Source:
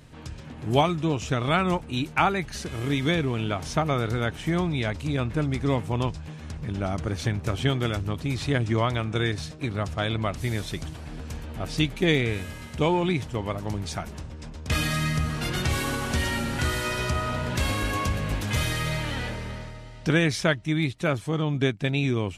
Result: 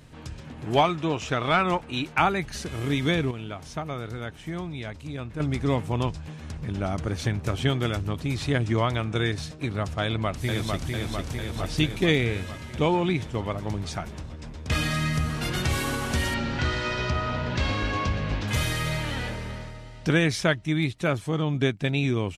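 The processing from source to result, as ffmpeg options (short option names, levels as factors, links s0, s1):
-filter_complex "[0:a]asettb=1/sr,asplit=3[s0][s1][s2];[s0]atrim=end=0.654[s3];[s1]atrim=start=0.65:end=2.18,asetpts=PTS-STARTPTS,afade=t=in:d=0.004:c=qsin,afade=t=out:st=1.526:d=0.004:c=qsin,asplit=2[s4][s5];[s5]highpass=f=720:p=1,volume=2.82,asoftclip=type=tanh:threshold=0.398[s6];[s4][s6]amix=inputs=2:normalize=0,lowpass=f=3000:p=1,volume=0.501[s7];[s2]atrim=start=2.176[s8];[s3][s7]acrossfade=d=0.004:c1=hsin:c2=qsin[s9];[s9][s8]acrossfade=d=0.004:c1=qsin:c2=hsin,asplit=2[s10][s11];[s11]afade=t=in:st=10.03:d=0.01,afade=t=out:st=10.9:d=0.01,aecho=0:1:450|900|1350|1800|2250|2700|3150|3600|4050|4500|4950|5400:0.707946|0.495562|0.346893|0.242825|0.169978|0.118984|0.0832891|0.0583024|0.0408117|0.0285682|0.0199977|0.0139984[s12];[s10][s12]amix=inputs=2:normalize=0,asettb=1/sr,asplit=3[s13][s14][s15];[s13]atrim=end=12.254[s16];[s14]atrim=start=12.25:end=15.13,asetpts=PTS-STARTPTS,afade=t=in:d=0.004:c=qsin,afade=t=out:st=2.876:d=0.004:c=qsin,highshelf=f=11000:g=-10[s17];[s15]atrim=start=15.126[s18];[s16][s17]acrossfade=d=0.004:c1=hsin:c2=qsin[s19];[s19][s18]acrossfade=d=0.004:c1=qsin:c2=hsin,asettb=1/sr,asplit=3[s20][s21][s22];[s20]atrim=end=16.344[s23];[s21]atrim=start=16.34:end=18.48,asetpts=PTS-STARTPTS,afade=t=in:d=0.004:c=qsin,afade=t=out:st=2.136:d=0.004:c=qsin,lowpass=f=5500:w=0.5412,lowpass=f=5500:w=1.3066[s24];[s22]atrim=start=18.476[s25];[s23][s24]acrossfade=d=0.004:c1=hsin:c2=qsin[s26];[s26][s25]acrossfade=d=0.004:c1=qsin:c2=hsin,asplit=3[s27][s28][s29];[s27]atrim=end=3.312[s30];[s28]atrim=start=3.308:end=5.402,asetpts=PTS-STARTPTS,volume=0.398[s31];[s29]atrim=start=5.398[s32];[s30][s31]acrossfade=d=0.004:c1=hsin:c2=hsin[s33];[s33][s32]acrossfade=d=0.004:c1=hsin:c2=hsin"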